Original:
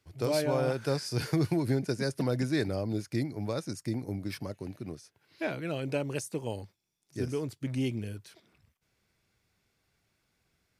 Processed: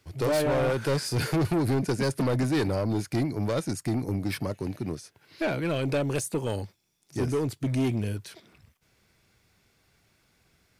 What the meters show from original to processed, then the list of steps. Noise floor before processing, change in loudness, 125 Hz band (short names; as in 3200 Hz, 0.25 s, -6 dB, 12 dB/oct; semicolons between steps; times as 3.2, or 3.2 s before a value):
-77 dBFS, +4.5 dB, +5.0 dB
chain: dynamic EQ 5500 Hz, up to -6 dB, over -57 dBFS, Q 2.9; soft clip -30 dBFS, distortion -9 dB; gain +9 dB